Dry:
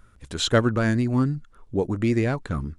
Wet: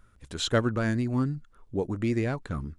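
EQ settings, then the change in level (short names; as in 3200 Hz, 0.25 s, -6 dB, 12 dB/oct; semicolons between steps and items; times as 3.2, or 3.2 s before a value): none; -5.0 dB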